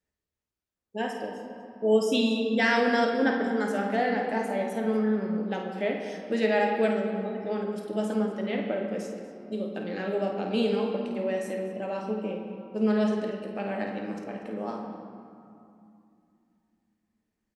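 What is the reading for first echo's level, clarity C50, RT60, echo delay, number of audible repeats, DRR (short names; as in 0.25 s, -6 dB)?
-8.0 dB, 2.5 dB, 2.6 s, 51 ms, 1, 0.5 dB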